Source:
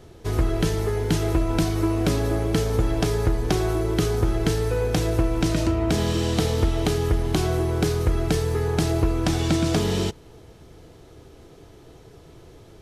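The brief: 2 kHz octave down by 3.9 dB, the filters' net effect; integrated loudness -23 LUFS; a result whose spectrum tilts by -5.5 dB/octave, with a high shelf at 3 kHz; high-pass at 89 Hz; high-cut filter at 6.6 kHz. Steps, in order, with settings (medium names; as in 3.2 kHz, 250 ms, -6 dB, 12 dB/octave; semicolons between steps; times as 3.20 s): high-pass 89 Hz; low-pass 6.6 kHz; peaking EQ 2 kHz -8 dB; treble shelf 3 kHz +7.5 dB; trim +1.5 dB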